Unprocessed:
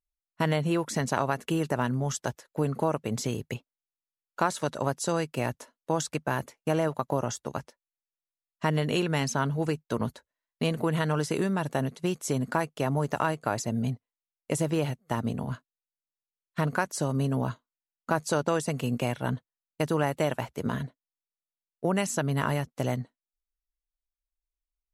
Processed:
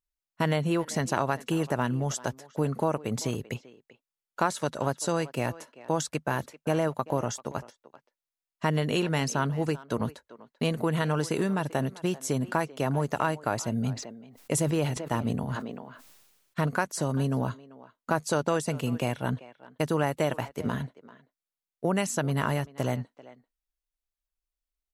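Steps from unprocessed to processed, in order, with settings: speakerphone echo 0.39 s, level -17 dB; 13.93–16.67 sustainer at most 43 dB/s

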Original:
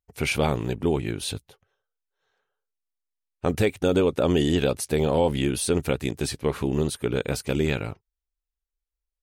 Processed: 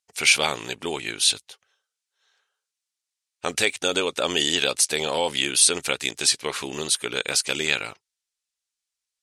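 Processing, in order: weighting filter ITU-R 468; gain +2 dB

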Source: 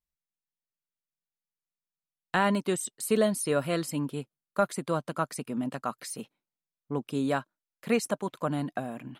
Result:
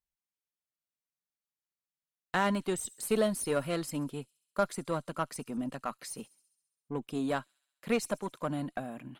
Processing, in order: added harmonics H 8 -27 dB, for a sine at -10.5 dBFS; thin delay 67 ms, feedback 67%, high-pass 5300 Hz, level -18.5 dB; gain -3.5 dB

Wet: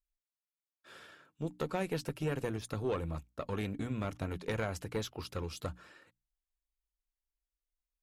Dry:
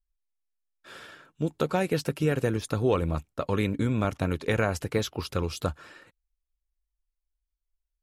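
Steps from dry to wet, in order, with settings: tube stage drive 16 dB, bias 0.45; notches 60/120/180/240/300 Hz; gain -6.5 dB

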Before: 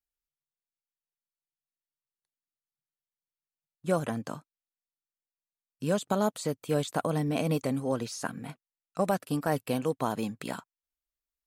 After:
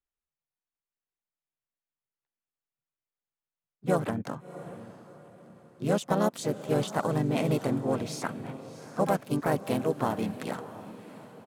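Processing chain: Wiener smoothing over 9 samples; diffused feedback echo 0.685 s, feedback 40%, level -14 dB; harmoniser -3 st -5 dB, +5 st -10 dB

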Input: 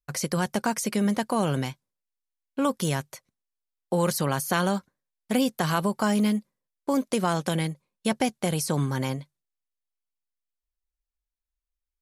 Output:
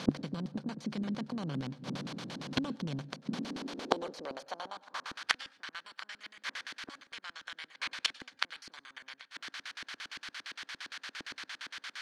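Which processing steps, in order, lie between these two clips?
per-bin compression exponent 0.4; high-pass sweep 140 Hz -> 1700 Hz, 3.04–5.37; flipped gate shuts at -20 dBFS, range -27 dB; LFO low-pass square 8.7 Hz 280–4200 Hz; on a send: reverb RT60 0.35 s, pre-delay 96 ms, DRR 20.5 dB; on the sum: gain +5 dB

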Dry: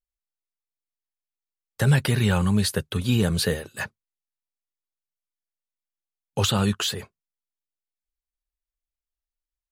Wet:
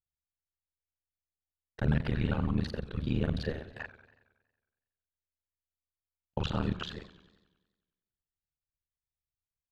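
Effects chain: local time reversal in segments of 33 ms; bell 66 Hz +9.5 dB 0.28 oct; AM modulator 76 Hz, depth 95%; air absorption 260 m; warbling echo 92 ms, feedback 61%, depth 167 cents, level -15.5 dB; gain -4.5 dB

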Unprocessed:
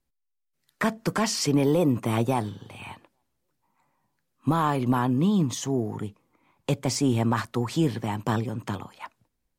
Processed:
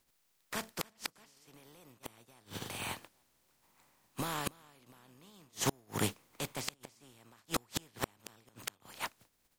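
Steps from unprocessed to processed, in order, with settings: spectral contrast lowered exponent 0.47; pre-echo 0.285 s -15 dB; flipped gate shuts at -18 dBFS, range -38 dB; gain +1 dB

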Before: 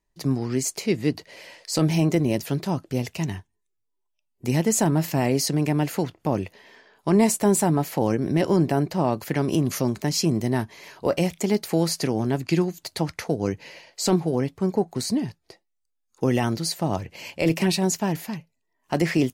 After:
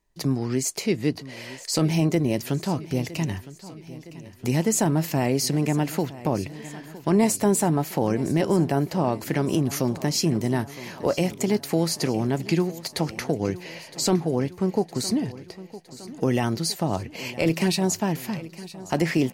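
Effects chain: in parallel at +2.5 dB: compressor, threshold -32 dBFS, peak gain reduction 16.5 dB; on the sum: feedback echo 0.962 s, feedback 57%, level -17 dB; gain -3 dB

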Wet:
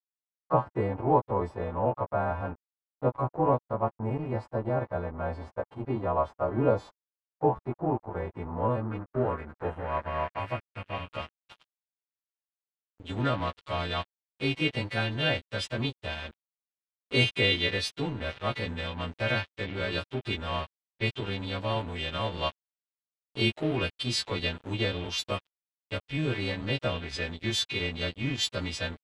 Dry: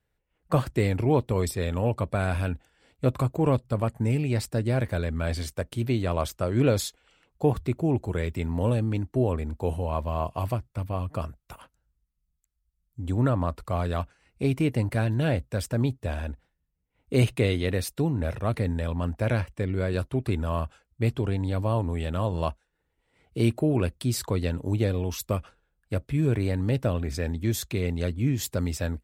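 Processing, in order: frequency quantiser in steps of 2 st; low shelf 260 Hz -6 dB; crossover distortion -39.5 dBFS; low-pass sweep 920 Hz -> 3400 Hz, 8.31–11.58

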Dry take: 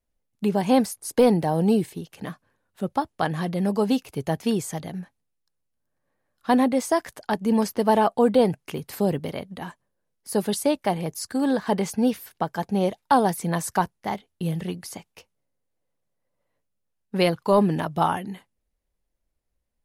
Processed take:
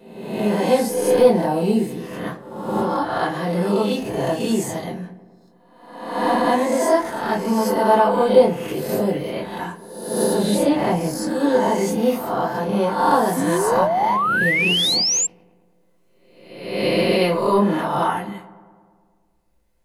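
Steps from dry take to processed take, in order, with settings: spectral swells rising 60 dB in 1.04 s; recorder AGC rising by 6.4 dB/s; 10.38–11.27 tone controls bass +9 dB, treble -2 dB; darkening echo 0.108 s, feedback 70%, low-pass 2500 Hz, level -18 dB; reverb RT60 0.25 s, pre-delay 3 ms, DRR -5 dB; 13.36–15.27 painted sound rise 250–7600 Hz -12 dBFS; low shelf 190 Hz -10 dB; gain -7 dB

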